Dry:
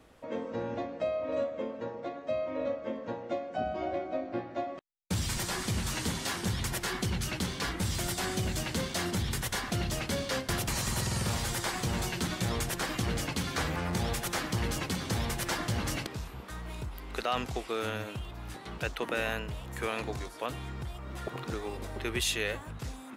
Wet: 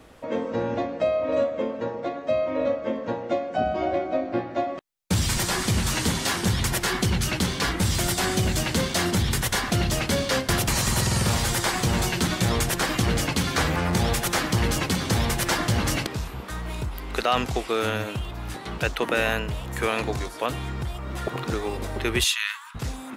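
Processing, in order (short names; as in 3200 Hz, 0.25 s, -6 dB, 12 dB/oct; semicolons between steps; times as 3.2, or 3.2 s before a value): 22.24–22.75 rippled Chebyshev high-pass 930 Hz, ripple 3 dB; gain +8.5 dB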